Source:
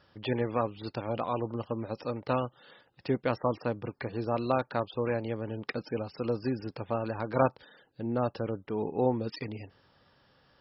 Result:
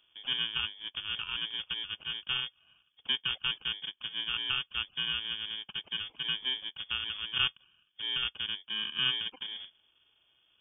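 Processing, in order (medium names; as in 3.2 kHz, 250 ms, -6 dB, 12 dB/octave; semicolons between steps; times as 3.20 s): bit-reversed sample order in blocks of 32 samples; frequency inversion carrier 3.4 kHz; trim -2 dB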